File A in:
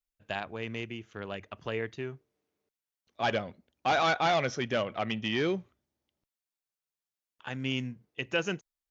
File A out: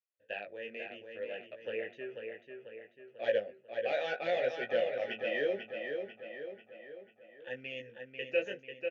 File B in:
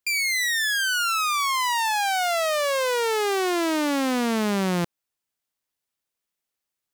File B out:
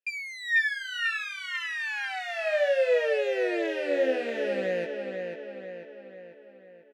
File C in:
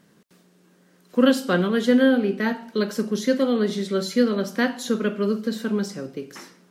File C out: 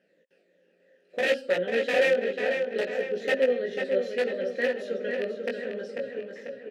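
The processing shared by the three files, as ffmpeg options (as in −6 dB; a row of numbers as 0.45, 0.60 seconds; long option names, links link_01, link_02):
-filter_complex "[0:a]afftfilt=real='re*pow(10,7/40*sin(2*PI*(1.1*log(max(b,1)*sr/1024/100)/log(2)-(-2.9)*(pts-256)/sr)))':imag='im*pow(10,7/40*sin(2*PI*(1.1*log(max(b,1)*sr/1024/100)/log(2)-(-2.9)*(pts-256)/sr)))':win_size=1024:overlap=0.75,aeval=exprs='(mod(3.98*val(0)+1,2)-1)/3.98':channel_layout=same,flanger=delay=16:depth=5.5:speed=0.66,asplit=3[link_01][link_02][link_03];[link_01]bandpass=frequency=530:width_type=q:width=8,volume=0dB[link_04];[link_02]bandpass=frequency=1840:width_type=q:width=8,volume=-6dB[link_05];[link_03]bandpass=frequency=2480:width_type=q:width=8,volume=-9dB[link_06];[link_04][link_05][link_06]amix=inputs=3:normalize=0,asplit=2[link_07][link_08];[link_08]adelay=493,lowpass=frequency=4500:poles=1,volume=-5.5dB,asplit=2[link_09][link_10];[link_10]adelay=493,lowpass=frequency=4500:poles=1,volume=0.53,asplit=2[link_11][link_12];[link_12]adelay=493,lowpass=frequency=4500:poles=1,volume=0.53,asplit=2[link_13][link_14];[link_14]adelay=493,lowpass=frequency=4500:poles=1,volume=0.53,asplit=2[link_15][link_16];[link_16]adelay=493,lowpass=frequency=4500:poles=1,volume=0.53,asplit=2[link_17][link_18];[link_18]adelay=493,lowpass=frequency=4500:poles=1,volume=0.53,asplit=2[link_19][link_20];[link_20]adelay=493,lowpass=frequency=4500:poles=1,volume=0.53[link_21];[link_09][link_11][link_13][link_15][link_17][link_19][link_21]amix=inputs=7:normalize=0[link_22];[link_07][link_22]amix=inputs=2:normalize=0,volume=8dB"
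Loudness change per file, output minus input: −4.5, −5.5, −5.0 LU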